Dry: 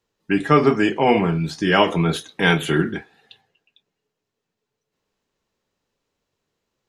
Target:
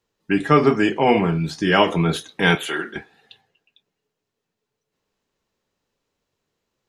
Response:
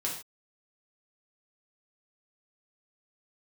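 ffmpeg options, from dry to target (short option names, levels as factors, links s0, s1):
-filter_complex "[0:a]asettb=1/sr,asplit=3[s0][s1][s2];[s0]atrim=end=2.554[s3];[s1]atrim=start=2.55:end=2.96,asetpts=PTS-STARTPTS,afade=t=in:d=0.004:c=qsin,afade=t=out:st=0.406:d=0.004:c=qsin,highpass=570[s4];[s2]atrim=start=2.956[s5];[s3][s4]acrossfade=d=0.004:c1=hsin:c2=qsin[s6];[s6][s5]acrossfade=d=0.004:c1=qsin:c2=hsin"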